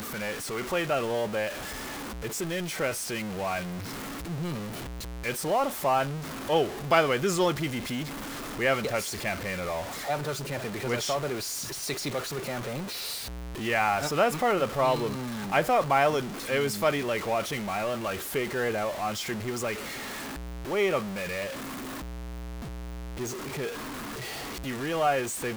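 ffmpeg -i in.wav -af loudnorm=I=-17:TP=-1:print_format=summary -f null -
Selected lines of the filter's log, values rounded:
Input Integrated:    -29.7 LUFS
Input True Peak:      -7.0 dBTP
Input LRA:             6.3 LU
Input Threshold:     -39.8 LUFS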